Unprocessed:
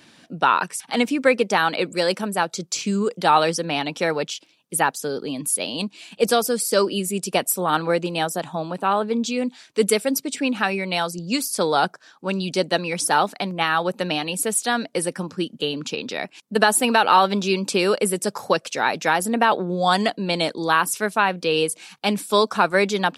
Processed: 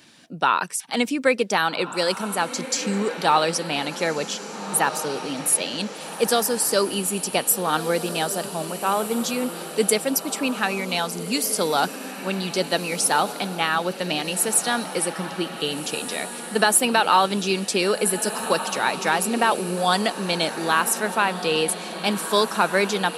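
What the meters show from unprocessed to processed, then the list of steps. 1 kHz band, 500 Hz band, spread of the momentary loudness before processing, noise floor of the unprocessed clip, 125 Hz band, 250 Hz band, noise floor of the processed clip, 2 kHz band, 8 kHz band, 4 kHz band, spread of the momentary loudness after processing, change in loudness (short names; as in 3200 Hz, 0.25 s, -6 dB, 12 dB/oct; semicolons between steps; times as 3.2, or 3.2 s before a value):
-2.0 dB, -2.0 dB, 8 LU, -56 dBFS, -2.0 dB, -2.0 dB, -35 dBFS, -1.0 dB, +3.0 dB, +0.5 dB, 7 LU, -1.0 dB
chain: high shelf 4200 Hz +6 dB; diffused feedback echo 1.628 s, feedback 48%, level -10.5 dB; gain -2.5 dB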